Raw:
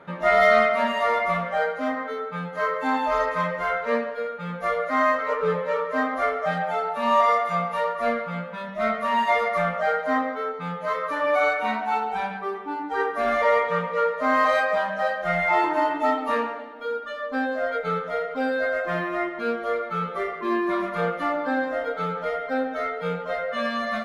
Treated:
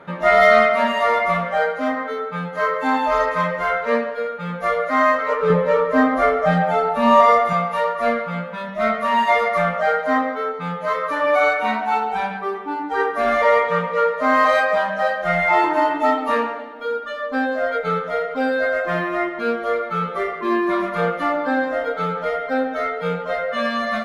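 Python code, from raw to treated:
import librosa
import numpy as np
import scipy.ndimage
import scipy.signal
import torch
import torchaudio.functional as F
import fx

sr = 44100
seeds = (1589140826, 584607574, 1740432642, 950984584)

y = fx.low_shelf(x, sr, hz=410.0, db=10.5, at=(5.5, 7.53))
y = y * 10.0 ** (4.5 / 20.0)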